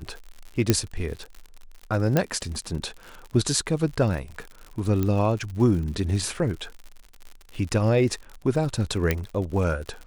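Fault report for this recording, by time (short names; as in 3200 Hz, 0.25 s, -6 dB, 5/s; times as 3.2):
crackle 75/s -33 dBFS
0.7 pop -4 dBFS
2.17 pop -7 dBFS
5.03 pop -13 dBFS
9.11 pop -8 dBFS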